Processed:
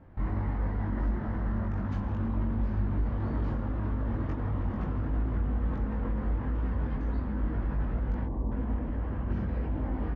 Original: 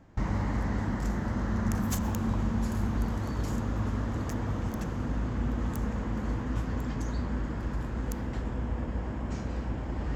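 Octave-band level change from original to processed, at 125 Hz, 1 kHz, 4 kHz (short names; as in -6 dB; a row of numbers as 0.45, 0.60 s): +0.5 dB, -2.5 dB, under -10 dB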